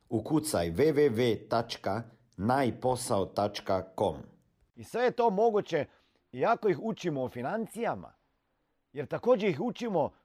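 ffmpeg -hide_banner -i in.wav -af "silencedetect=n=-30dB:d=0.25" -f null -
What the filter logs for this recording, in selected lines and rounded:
silence_start: 2.00
silence_end: 2.40 | silence_duration: 0.40
silence_start: 4.12
silence_end: 4.95 | silence_duration: 0.82
silence_start: 5.83
silence_end: 6.38 | silence_duration: 0.55
silence_start: 7.94
silence_end: 8.98 | silence_duration: 1.05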